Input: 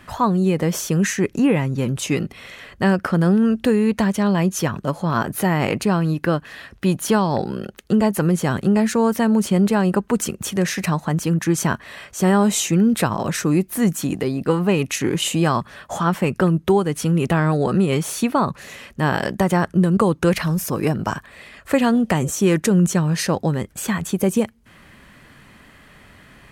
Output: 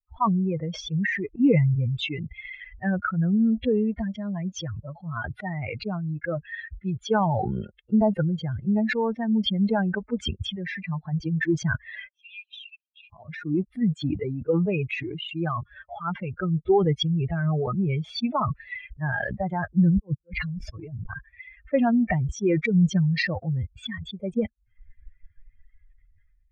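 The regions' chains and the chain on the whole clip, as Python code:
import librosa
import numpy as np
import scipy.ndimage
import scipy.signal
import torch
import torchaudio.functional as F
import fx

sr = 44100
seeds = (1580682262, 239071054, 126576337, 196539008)

y = fx.chain(x, sr, fx.lower_of_two(delay_ms=0.34),
    fx.brickwall_highpass(low_hz=2400.0),
    fx.tilt_eq(slope=-4.0), at=(12.09, 13.13))
y = fx.chain(y, sr, fx.low_shelf(hz=320.0, db=2.0),
    fx.over_compress(threshold_db=-20.0, ratio=-1.0),
    fx.auto_swell(attack_ms=338.0), at=(19.89, 21.1))
y = fx.bin_expand(y, sr, power=3.0)
y = scipy.signal.sosfilt(scipy.signal.bessel(6, 1600.0, 'lowpass', norm='mag', fs=sr, output='sos'), y)
y = fx.sustainer(y, sr, db_per_s=21.0)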